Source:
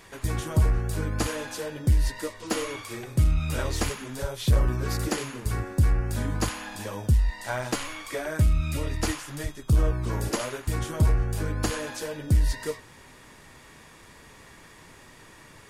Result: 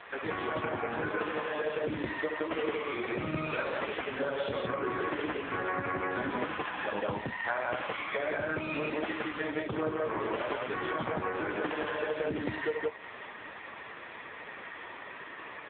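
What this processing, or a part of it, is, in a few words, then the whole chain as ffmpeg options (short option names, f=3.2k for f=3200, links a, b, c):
voicemail: -af "highpass=350,lowpass=2.7k,highshelf=f=2.1k:g=4,aecho=1:1:69.97|169.1:0.501|1,acompressor=threshold=-35dB:ratio=8,volume=8.5dB" -ar 8000 -c:a libopencore_amrnb -b:a 5900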